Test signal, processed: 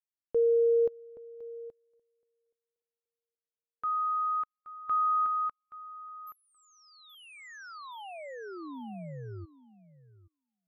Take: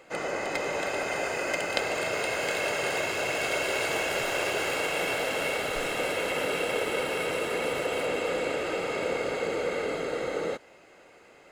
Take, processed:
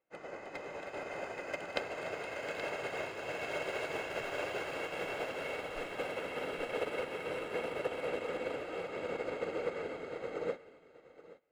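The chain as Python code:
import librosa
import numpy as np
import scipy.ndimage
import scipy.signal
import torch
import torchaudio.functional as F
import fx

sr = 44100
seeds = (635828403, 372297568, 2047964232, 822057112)

y = fx.peak_eq(x, sr, hz=11000.0, db=-11.5, octaves=2.3)
y = fx.echo_feedback(y, sr, ms=825, feedback_pct=22, wet_db=-6.0)
y = fx.upward_expand(y, sr, threshold_db=-44.0, expansion=2.5)
y = y * 10.0 ** (-4.5 / 20.0)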